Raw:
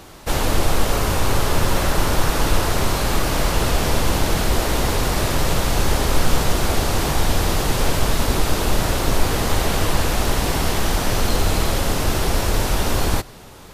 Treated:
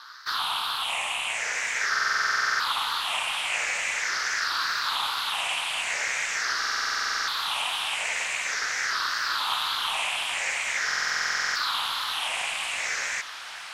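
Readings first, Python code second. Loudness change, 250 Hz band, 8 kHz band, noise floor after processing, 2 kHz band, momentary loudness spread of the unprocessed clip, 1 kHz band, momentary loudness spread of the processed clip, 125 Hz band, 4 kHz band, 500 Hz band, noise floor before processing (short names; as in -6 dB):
-5.0 dB, under -30 dB, -6.5 dB, -39 dBFS, +2.0 dB, 1 LU, -5.5 dB, 3 LU, under -35 dB, -1.0 dB, -21.0 dB, -41 dBFS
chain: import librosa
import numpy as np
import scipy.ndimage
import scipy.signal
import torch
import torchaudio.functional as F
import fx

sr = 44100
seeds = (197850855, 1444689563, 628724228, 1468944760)

p1 = fx.spec_ripple(x, sr, per_octave=0.58, drift_hz=-0.44, depth_db=20)
p2 = scipy.signal.sosfilt(scipy.signal.butter(4, 1300.0, 'highpass', fs=sr, output='sos'), p1)
p3 = fx.high_shelf(p2, sr, hz=4500.0, db=7.5)
p4 = 10.0 ** (-22.0 / 20.0) * np.tanh(p3 / 10.0 ** (-22.0 / 20.0))
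p5 = p3 + (p4 * librosa.db_to_amplitude(-5.0))
p6 = fx.wow_flutter(p5, sr, seeds[0], rate_hz=2.1, depth_cents=150.0)
p7 = p6 * np.sin(2.0 * np.pi * 130.0 * np.arange(len(p6)) / sr)
p8 = fx.spacing_loss(p7, sr, db_at_10k=24)
p9 = fx.echo_diffused(p8, sr, ms=1257, feedback_pct=66, wet_db=-13.5)
p10 = fx.buffer_glitch(p9, sr, at_s=(1.9, 6.58, 10.86), block=2048, repeats=14)
y = p10 * librosa.db_to_amplitude(1.5)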